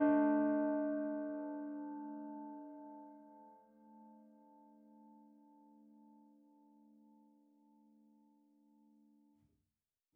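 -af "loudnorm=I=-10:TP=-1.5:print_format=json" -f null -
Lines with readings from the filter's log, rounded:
"input_i" : "-38.9",
"input_tp" : "-22.7",
"input_lra" : "26.7",
"input_thresh" : "-53.6",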